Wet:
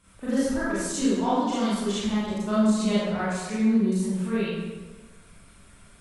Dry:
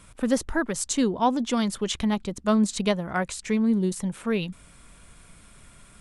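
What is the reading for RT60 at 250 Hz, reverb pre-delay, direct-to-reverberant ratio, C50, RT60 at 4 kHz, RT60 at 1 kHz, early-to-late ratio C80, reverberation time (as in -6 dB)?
1.3 s, 27 ms, -11.5 dB, -4.0 dB, 0.90 s, 1.3 s, -0.5 dB, 1.3 s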